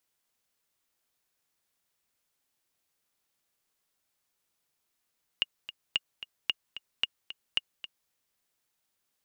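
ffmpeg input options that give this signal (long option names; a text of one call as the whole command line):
ffmpeg -f lavfi -i "aevalsrc='pow(10,(-12.5-13.5*gte(mod(t,2*60/223),60/223))/20)*sin(2*PI*2850*mod(t,60/223))*exp(-6.91*mod(t,60/223)/0.03)':duration=2.69:sample_rate=44100" out.wav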